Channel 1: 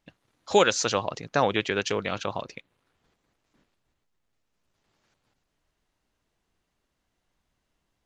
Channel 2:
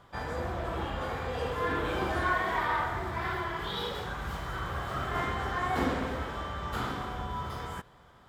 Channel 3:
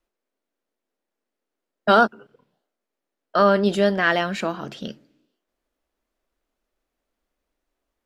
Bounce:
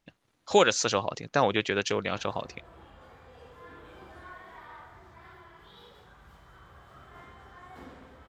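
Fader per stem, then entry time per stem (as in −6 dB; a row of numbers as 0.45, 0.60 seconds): −1.0 dB, −18.5 dB, muted; 0.00 s, 2.00 s, muted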